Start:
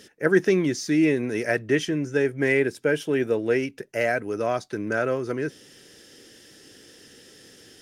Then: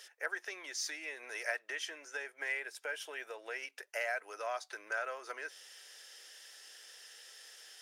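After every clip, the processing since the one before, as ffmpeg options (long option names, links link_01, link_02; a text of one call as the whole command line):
ffmpeg -i in.wav -af "acompressor=threshold=-26dB:ratio=6,highpass=frequency=700:width=0.5412,highpass=frequency=700:width=1.3066,volume=-2.5dB" out.wav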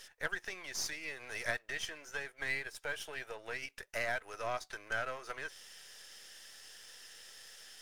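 ffmpeg -i in.wav -af "aeval=exprs='if(lt(val(0),0),0.447*val(0),val(0))':channel_layout=same,volume=3dB" out.wav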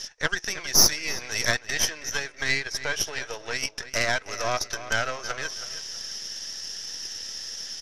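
ffmpeg -i in.wav -filter_complex "[0:a]lowpass=frequency=5700:width_type=q:width=7.5,aeval=exprs='0.251*(cos(1*acos(clip(val(0)/0.251,-1,1)))-cos(1*PI/2))+0.0398*(cos(6*acos(clip(val(0)/0.251,-1,1)))-cos(6*PI/2))':channel_layout=same,asplit=2[link_01][link_02];[link_02]adelay=323,lowpass=frequency=3900:poles=1,volume=-13dB,asplit=2[link_03][link_04];[link_04]adelay=323,lowpass=frequency=3900:poles=1,volume=0.33,asplit=2[link_05][link_06];[link_06]adelay=323,lowpass=frequency=3900:poles=1,volume=0.33[link_07];[link_01][link_03][link_05][link_07]amix=inputs=4:normalize=0,volume=7.5dB" out.wav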